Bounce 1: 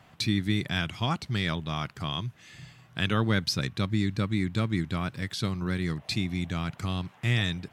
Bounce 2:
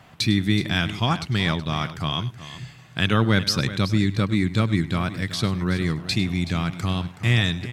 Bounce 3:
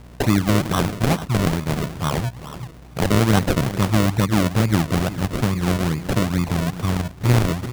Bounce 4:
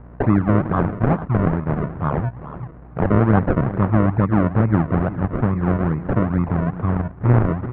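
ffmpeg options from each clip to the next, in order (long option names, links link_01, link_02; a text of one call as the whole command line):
ffmpeg -i in.wav -af "aecho=1:1:101|374:0.133|0.2,volume=6dB" out.wav
ffmpeg -i in.wav -af "aeval=exprs='val(0)+0.00562*(sin(2*PI*60*n/s)+sin(2*PI*2*60*n/s)/2+sin(2*PI*3*60*n/s)/3+sin(2*PI*4*60*n/s)/4+sin(2*PI*5*60*n/s)/5)':channel_layout=same,acrusher=samples=37:mix=1:aa=0.000001:lfo=1:lforange=37:lforate=2.3,volume=3dB" out.wav
ffmpeg -i in.wav -af "lowpass=frequency=1600:width=0.5412,lowpass=frequency=1600:width=1.3066,volume=1.5dB" out.wav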